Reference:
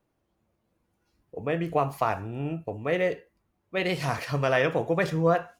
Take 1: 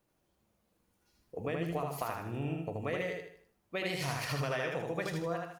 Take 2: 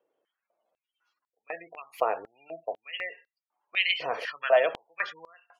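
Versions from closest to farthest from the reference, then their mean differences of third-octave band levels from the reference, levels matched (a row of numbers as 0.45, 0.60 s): 1, 2; 7.0, 14.0 dB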